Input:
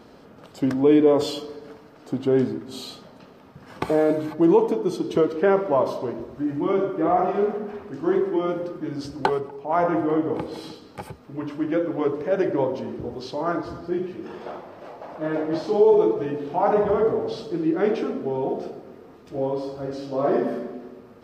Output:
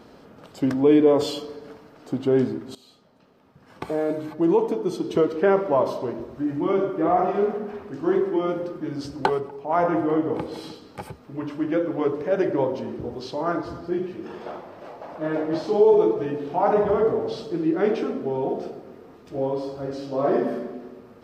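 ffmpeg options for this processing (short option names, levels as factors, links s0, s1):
-filter_complex "[0:a]asplit=2[s0][s1];[s0]atrim=end=2.75,asetpts=PTS-STARTPTS,afade=t=out:st=2.746:d=0.004:c=hsin:silence=0.112202[s2];[s1]atrim=start=2.75,asetpts=PTS-STARTPTS,afade=t=in:d=2.55:silence=0.112202[s3];[s2][s3]concat=n=2:v=0:a=1"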